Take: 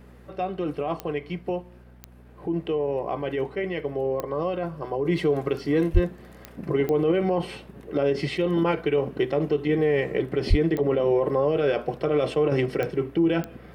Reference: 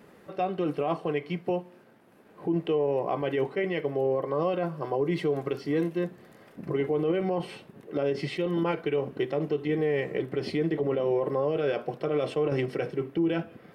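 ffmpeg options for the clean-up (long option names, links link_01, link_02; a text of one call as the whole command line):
ffmpeg -i in.wav -filter_complex "[0:a]adeclick=threshold=4,bandreject=frequency=61:width_type=h:width=4,bandreject=frequency=122:width_type=h:width=4,bandreject=frequency=183:width_type=h:width=4,bandreject=frequency=244:width_type=h:width=4,asplit=3[link_01][link_02][link_03];[link_01]afade=type=out:start_time=5.93:duration=0.02[link_04];[link_02]highpass=frequency=140:width=0.5412,highpass=frequency=140:width=1.3066,afade=type=in:start_time=5.93:duration=0.02,afade=type=out:start_time=6.05:duration=0.02[link_05];[link_03]afade=type=in:start_time=6.05:duration=0.02[link_06];[link_04][link_05][link_06]amix=inputs=3:normalize=0,asplit=3[link_07][link_08][link_09];[link_07]afade=type=out:start_time=10.49:duration=0.02[link_10];[link_08]highpass=frequency=140:width=0.5412,highpass=frequency=140:width=1.3066,afade=type=in:start_time=10.49:duration=0.02,afade=type=out:start_time=10.61:duration=0.02[link_11];[link_09]afade=type=in:start_time=10.61:duration=0.02[link_12];[link_10][link_11][link_12]amix=inputs=3:normalize=0,asetnsamples=nb_out_samples=441:pad=0,asendcmd='5.05 volume volume -4.5dB',volume=0dB" out.wav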